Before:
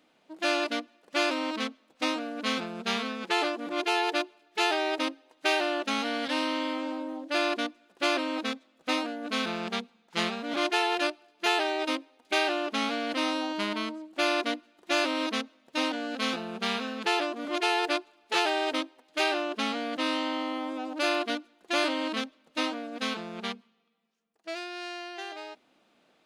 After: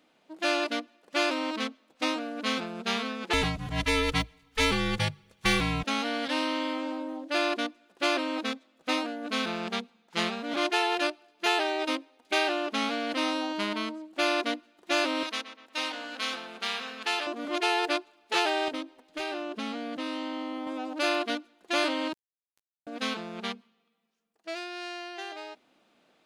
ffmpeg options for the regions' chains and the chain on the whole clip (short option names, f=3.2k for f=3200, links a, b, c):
-filter_complex "[0:a]asettb=1/sr,asplit=3[a][b][c];[a]atrim=end=3.334[d];[b]atrim=start=3.33:end=5.84,asetpts=PTS-STARTPTS,afade=t=in:d=0.004:c=qsin,afade=t=out:st=2.506:d=0.004:c=qsin,highshelf=f=4.2k:g=7,afreqshift=-420[e];[c]atrim=start=5.836[f];[d][e]acrossfade=d=0.004:c1=hsin:c2=qsin[g];[g][f]acrossfade=d=0.004:c1=qsin:c2=hsin,asettb=1/sr,asplit=3[h][i][j];[h]atrim=end=15.234[k];[i]atrim=start=15.23:end=17.27,asetpts=PTS-STARTPTS,afade=t=in:d=0.004:c=qsin,afade=t=out:st=2.036:d=0.004:c=qsin,highpass=f=1.1k:p=1,asplit=2[l][m];[m]adelay=123,lowpass=f=2.8k:p=1,volume=-10dB,asplit=2[n][o];[o]adelay=123,lowpass=f=2.8k:p=1,volume=0.48,asplit=2[p][q];[q]adelay=123,lowpass=f=2.8k:p=1,volume=0.48,asplit=2[r][s];[s]adelay=123,lowpass=f=2.8k:p=1,volume=0.48,asplit=2[t][u];[u]adelay=123,lowpass=f=2.8k:p=1,volume=0.48[v];[l][n][p][r][t][v]amix=inputs=6:normalize=0,atrim=end_sample=89964[w];[j]atrim=start=17.266[x];[k][w]acrossfade=d=0.004:c1=hsin:c2=qsin[y];[y][x]acrossfade=d=0.004:c1=qsin:c2=hsin,asettb=1/sr,asplit=3[z][aa][ab];[z]atrim=end=18.684[ac];[aa]atrim=start=18.68:end=20.67,asetpts=PTS-STARTPTS,afade=t=in:d=0.004:c=qsin,afade=t=out:st=1.986:d=0.004:c=qsin,lowshelf=f=300:g=9,acompressor=threshold=-36dB:ratio=2:attack=3.2:release=140:knee=1:detection=peak[ad];[ab]atrim=start=20.666[ae];[ac][ad]acrossfade=d=0.004:c1=hsin:c2=qsin[af];[af][ae]acrossfade=d=0.004:c1=qsin:c2=hsin,asettb=1/sr,asplit=3[ag][ah][ai];[ag]atrim=end=22.134[aj];[ah]atrim=start=22.13:end=22.87,asetpts=PTS-STARTPTS,afade=t=in:d=0.004:c=qsin,afade=t=out:st=0.736:d=0.004:c=qsin,lowshelf=f=120:g=-9.5,acrossover=split=1200|7700[ak][al][am];[ak]acompressor=threshold=-43dB:ratio=4[an];[al]acompressor=threshold=-46dB:ratio=4[ao];[am]acompressor=threshold=-58dB:ratio=4[ap];[an][ao][ap]amix=inputs=3:normalize=0,acrusher=bits=3:mix=0:aa=0.5[aq];[ai]atrim=start=22.866[ar];[aj][aq]acrossfade=d=0.004:c1=hsin:c2=qsin[as];[as][ar]acrossfade=d=0.004:c1=qsin:c2=hsin"